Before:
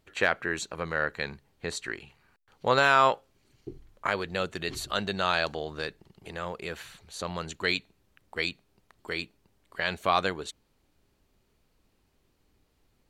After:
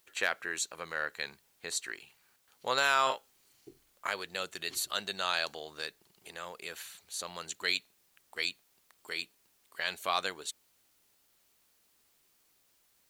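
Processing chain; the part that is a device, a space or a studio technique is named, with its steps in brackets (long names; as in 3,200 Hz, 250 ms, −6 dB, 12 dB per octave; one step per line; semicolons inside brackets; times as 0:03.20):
turntable without a phono preamp (RIAA equalisation recording; white noise bed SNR 34 dB)
0:03.03–0:03.69: double-tracking delay 38 ms −5.5 dB
level −7 dB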